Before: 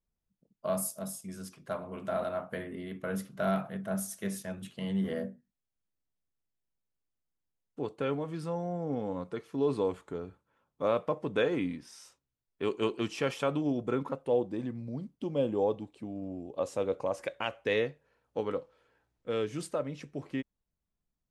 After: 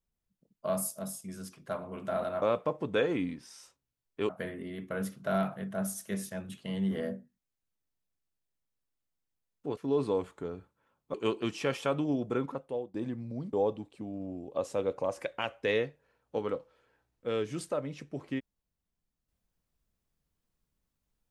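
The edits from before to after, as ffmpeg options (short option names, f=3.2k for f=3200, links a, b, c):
-filter_complex "[0:a]asplit=7[a][b][c][d][e][f][g];[a]atrim=end=2.422[h];[b]atrim=start=10.838:end=12.712[i];[c]atrim=start=2.418:end=7.902[j];[d]atrim=start=9.468:end=10.842[k];[e]atrim=start=12.708:end=14.51,asetpts=PTS-STARTPTS,afade=t=out:st=1.092:d=0.71:c=qsin:silence=0.0749894[l];[f]atrim=start=14.51:end=15.102,asetpts=PTS-STARTPTS,afade=t=in:d=0.004:c=hsin:silence=0.0749894[m];[g]atrim=start=15.548[n];[h][i]acrossfade=d=0.004:c1=hsin:c2=hsin[o];[o][j]acrossfade=d=0.004:c1=hsin:c2=hsin[p];[p][k]acrossfade=d=0.004:c1=hsin:c2=hsin[q];[l][m]concat=n=2:v=0:a=1[r];[q][r]acrossfade=d=0.004:c1=hsin:c2=hsin[s];[s][n]acrossfade=d=0.004:c1=hsin:c2=hsin"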